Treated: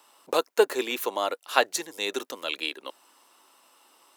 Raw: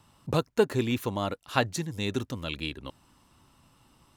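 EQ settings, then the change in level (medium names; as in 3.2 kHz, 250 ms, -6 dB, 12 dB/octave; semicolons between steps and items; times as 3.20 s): high-pass 390 Hz 24 dB/octave; treble shelf 11 kHz +8.5 dB; +4.5 dB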